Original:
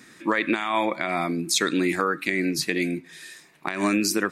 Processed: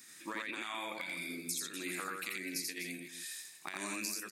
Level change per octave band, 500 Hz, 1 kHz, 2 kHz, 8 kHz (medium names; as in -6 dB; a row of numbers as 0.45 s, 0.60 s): -20.5 dB, -17.5 dB, -13.5 dB, -9.5 dB